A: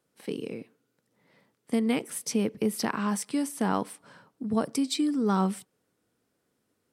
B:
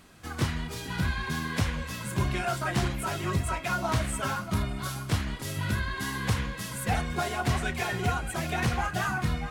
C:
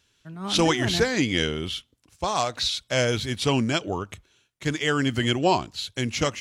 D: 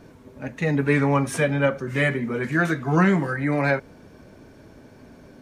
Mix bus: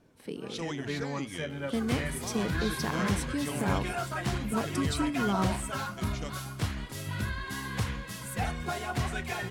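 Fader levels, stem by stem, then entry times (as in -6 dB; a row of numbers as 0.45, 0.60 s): -5.0, -4.0, -17.0, -15.5 dB; 0.00, 1.50, 0.00, 0.00 s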